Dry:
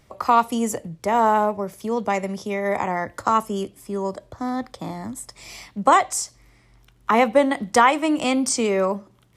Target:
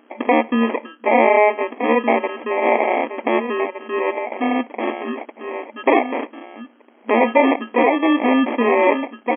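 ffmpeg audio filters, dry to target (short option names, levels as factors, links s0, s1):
-filter_complex "[0:a]asplit=2[s0][s1];[s1]adelay=1516,volume=0.398,highshelf=f=4000:g=-34.1[s2];[s0][s2]amix=inputs=2:normalize=0,acrossover=split=670[s3][s4];[s3]asoftclip=type=hard:threshold=0.112[s5];[s4]alimiter=limit=0.158:level=0:latency=1:release=302[s6];[s5][s6]amix=inputs=2:normalize=0,aeval=exprs='val(0)+0.00251*(sin(2*PI*60*n/s)+sin(2*PI*2*60*n/s)/2+sin(2*PI*3*60*n/s)/3+sin(2*PI*4*60*n/s)/4+sin(2*PI*5*60*n/s)/5)':c=same,acrusher=samples=30:mix=1:aa=0.000001,afftfilt=real='re*between(b*sr/4096,220,3300)':imag='im*between(b*sr/4096,220,3300)':win_size=4096:overlap=0.75,volume=2.11"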